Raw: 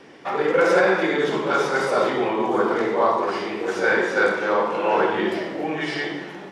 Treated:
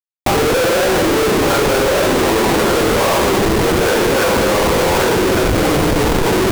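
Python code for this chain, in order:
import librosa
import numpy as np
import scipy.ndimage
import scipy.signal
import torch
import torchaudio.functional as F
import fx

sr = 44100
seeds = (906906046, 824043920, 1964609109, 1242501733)

y = scipy.signal.sosfilt(scipy.signal.butter(2, 1200.0, 'lowpass', fs=sr, output='sos'), x)
y = fx.low_shelf(y, sr, hz=240.0, db=-6.0)
y = fx.env_lowpass(y, sr, base_hz=550.0, full_db=-17.0)
y = fx.schmitt(y, sr, flips_db=-30.0)
y = y + 10.0 ** (-5.5 / 20.0) * np.pad(y, (int(1150 * sr / 1000.0), 0))[:len(y)]
y = fx.env_flatten(y, sr, amount_pct=100)
y = y * 10.0 ** (7.5 / 20.0)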